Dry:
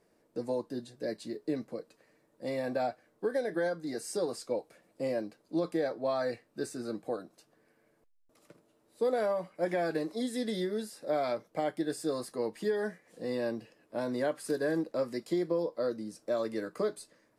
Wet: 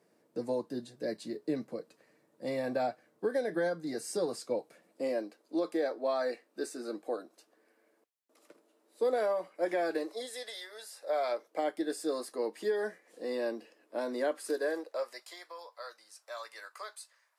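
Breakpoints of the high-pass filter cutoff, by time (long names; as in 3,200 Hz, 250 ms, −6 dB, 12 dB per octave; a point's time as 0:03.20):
high-pass filter 24 dB per octave
0:04.55 120 Hz
0:05.24 270 Hz
0:09.92 270 Hz
0:10.62 800 Hz
0:11.65 270 Hz
0:14.39 270 Hz
0:15.40 870 Hz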